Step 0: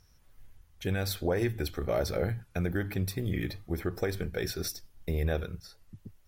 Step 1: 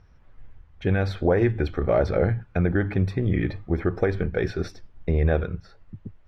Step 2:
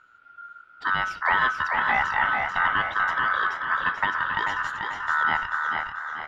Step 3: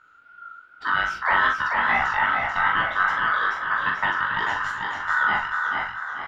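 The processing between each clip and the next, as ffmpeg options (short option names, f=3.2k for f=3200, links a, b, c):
-af "lowpass=2k,volume=8.5dB"
-filter_complex "[0:a]asplit=2[a][b];[b]asplit=3[c][d][e];[c]adelay=463,afreqshift=100,volume=-11dB[f];[d]adelay=926,afreqshift=200,volume=-21.2dB[g];[e]adelay=1389,afreqshift=300,volume=-31.3dB[h];[f][g][h]amix=inputs=3:normalize=0[i];[a][i]amix=inputs=2:normalize=0,aeval=exprs='val(0)*sin(2*PI*1400*n/s)':c=same,asplit=2[j][k];[k]aecho=0:1:438|876|1314|1752|2190:0.562|0.225|0.09|0.036|0.0144[l];[j][l]amix=inputs=2:normalize=0"
-filter_complex "[0:a]flanger=delay=16:depth=5.4:speed=2.5,asplit=2[a][b];[b]adelay=42,volume=-5dB[c];[a][c]amix=inputs=2:normalize=0,volume=3.5dB"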